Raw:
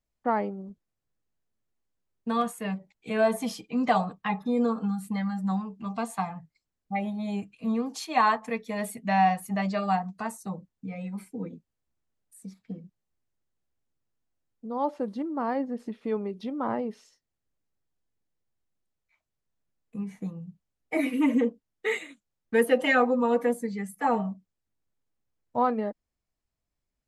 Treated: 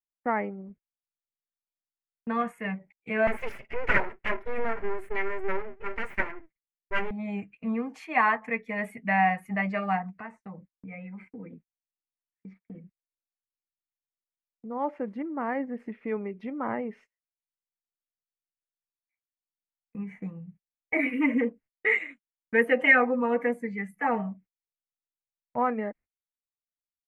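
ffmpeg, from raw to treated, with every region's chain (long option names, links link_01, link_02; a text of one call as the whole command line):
ffmpeg -i in.wav -filter_complex "[0:a]asettb=1/sr,asplit=3[link_01][link_02][link_03];[link_01]atrim=end=3.274[link_04];[link_02]atrim=start=3.27:end=7.11,asetpts=PTS-STARTPTS,afade=type=in:duration=0.004:curve=qsin,afade=type=out:start_time=3.836:duration=0.004:curve=qsin,equalizer=frequency=65:width=1.5:gain=-6,aecho=1:1:5.1:0.79,atrim=end_sample=169344,aeval=exprs='abs(val(0))':channel_layout=same[link_05];[link_03]atrim=start=7.106[link_06];[link_04][link_05]acrossfade=duration=0.004:curve1=hsin:curve2=qsin[link_07];[link_07][link_06]acrossfade=duration=0.004:curve1=qsin:curve2=hsin,asettb=1/sr,asplit=3[link_08][link_09][link_10];[link_08]atrim=end=10.164[link_11];[link_09]atrim=start=10.16:end=12.75,asetpts=PTS-STARTPTS,afade=type=in:duration=0.004:curve=qsin,afade=type=out:start_time=2.586:duration=0.004:curve=qsin,lowpass=3900,acompressor=threshold=-38dB:ratio=2.5:attack=3.2:release=140:knee=1:detection=peak[link_12];[link_10]atrim=start=12.746[link_13];[link_11][link_12]acrossfade=duration=0.004:curve1=hsin:curve2=qsin[link_14];[link_14][link_13]acrossfade=duration=0.004:curve1=qsin:curve2=hsin,agate=range=-26dB:threshold=-49dB:ratio=16:detection=peak,firequalizer=gain_entry='entry(1100,0);entry(2100,11);entry(3700,-15)':delay=0.05:min_phase=1,volume=-2dB" out.wav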